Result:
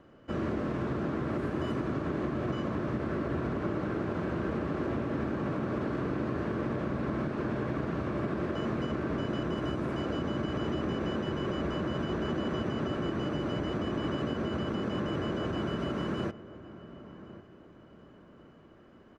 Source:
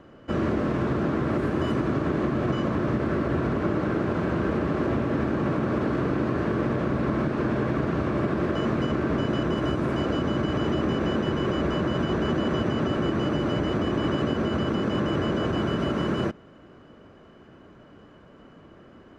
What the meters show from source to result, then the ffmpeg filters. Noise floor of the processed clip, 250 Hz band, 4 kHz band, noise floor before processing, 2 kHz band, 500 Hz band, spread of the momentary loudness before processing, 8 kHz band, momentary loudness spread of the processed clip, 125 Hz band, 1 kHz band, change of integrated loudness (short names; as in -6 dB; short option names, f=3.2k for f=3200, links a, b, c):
-55 dBFS, -7.0 dB, -6.5 dB, -51 dBFS, -7.0 dB, -7.0 dB, 1 LU, n/a, 1 LU, -7.0 dB, -7.0 dB, -7.0 dB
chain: -filter_complex "[0:a]asplit=2[a][b];[b]adelay=1099,lowpass=f=1.7k:p=1,volume=-15.5dB,asplit=2[c][d];[d]adelay=1099,lowpass=f=1.7k:p=1,volume=0.36,asplit=2[e][f];[f]adelay=1099,lowpass=f=1.7k:p=1,volume=0.36[g];[a][c][e][g]amix=inputs=4:normalize=0,volume=-7dB"